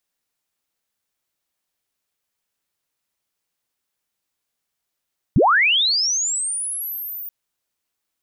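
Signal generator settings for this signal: sweep linear 81 Hz -> 15 kHz -10.5 dBFS -> -29 dBFS 1.93 s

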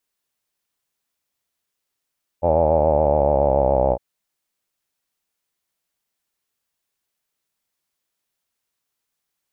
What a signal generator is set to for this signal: formant-synthesis vowel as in hawed, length 1.56 s, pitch 82.8 Hz, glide -4.5 st, vibrato 7.1 Hz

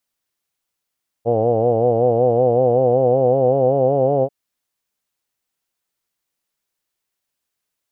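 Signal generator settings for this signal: formant vowel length 3.04 s, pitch 113 Hz, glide +3.5 st, F1 500 Hz, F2 750 Hz, F3 2.9 kHz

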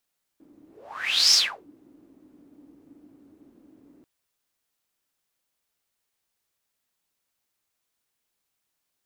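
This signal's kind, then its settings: whoosh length 3.64 s, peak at 0.94 s, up 0.73 s, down 0.33 s, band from 290 Hz, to 5.4 kHz, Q 10, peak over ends 37 dB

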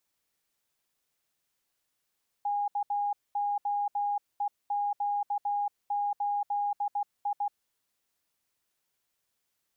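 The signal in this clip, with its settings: Morse "KOEQ8I" 16 wpm 818 Hz -26.5 dBFS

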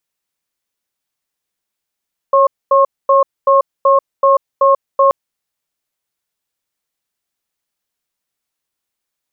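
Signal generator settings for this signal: cadence 550 Hz, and 1.08 kHz, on 0.14 s, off 0.24 s, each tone -9.5 dBFS 2.78 s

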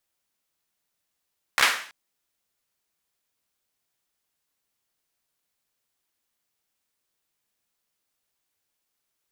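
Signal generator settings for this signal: hand clap length 0.33 s, apart 15 ms, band 1.7 kHz, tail 0.49 s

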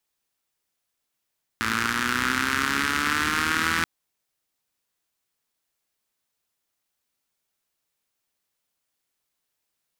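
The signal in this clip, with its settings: four-cylinder engine model, changing speed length 2.23 s, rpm 3300, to 5000, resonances 88/240/1400 Hz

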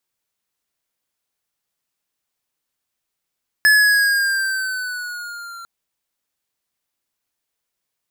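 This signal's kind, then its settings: gliding synth tone square, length 2.00 s, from 1.72 kHz, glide -4 st, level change -24.5 dB, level -11 dB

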